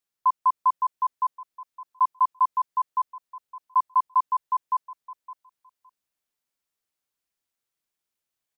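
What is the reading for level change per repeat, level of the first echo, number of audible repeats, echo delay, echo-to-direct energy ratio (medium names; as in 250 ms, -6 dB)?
-16.0 dB, -4.0 dB, 2, 563 ms, -4.0 dB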